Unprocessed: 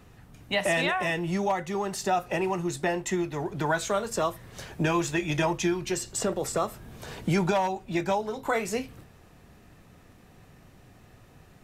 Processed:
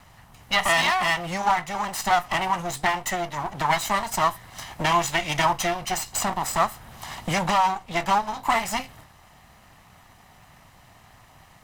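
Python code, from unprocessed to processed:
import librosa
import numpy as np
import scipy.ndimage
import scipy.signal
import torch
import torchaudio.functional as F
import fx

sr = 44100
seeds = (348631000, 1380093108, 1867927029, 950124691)

y = fx.lower_of_two(x, sr, delay_ms=1.0)
y = fx.low_shelf_res(y, sr, hz=540.0, db=-7.0, q=1.5)
y = y * 10.0 ** (6.5 / 20.0)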